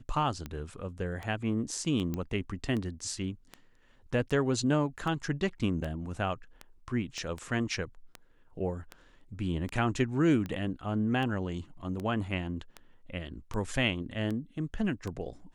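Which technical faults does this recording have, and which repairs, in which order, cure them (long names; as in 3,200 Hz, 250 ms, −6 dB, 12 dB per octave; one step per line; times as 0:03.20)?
scratch tick 78 rpm −24 dBFS
0:02.14: click −21 dBFS
0:07.18: click −28 dBFS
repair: click removal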